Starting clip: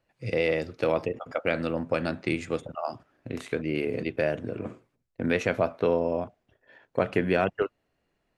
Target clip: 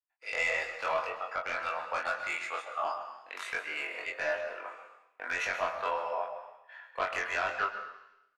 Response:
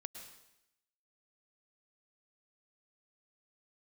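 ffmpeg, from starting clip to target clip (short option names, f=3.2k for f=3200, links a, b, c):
-filter_complex "[0:a]highpass=f=950:w=0.5412,highpass=f=950:w=1.3066,agate=range=-33dB:threshold=-59dB:ratio=3:detection=peak,highshelf=f=2.6k:g=-11.5,alimiter=level_in=1.5dB:limit=-24dB:level=0:latency=1:release=42,volume=-1.5dB,aeval=exprs='0.0562*sin(PI/2*1.41*val(0)/0.0562)':c=same,asplit=2[a][b];[b]adelay=23,volume=-5dB[c];[a][c]amix=inputs=2:normalize=0,asplit=2[d][e];[1:a]atrim=start_sample=2205,adelay=20[f];[e][f]afir=irnorm=-1:irlink=0,volume=4.5dB[g];[d][g]amix=inputs=2:normalize=0,adynamicequalizer=threshold=0.00562:dfrequency=2000:dqfactor=0.7:tfrequency=2000:tqfactor=0.7:attack=5:release=100:ratio=0.375:range=2.5:mode=cutabove:tftype=highshelf"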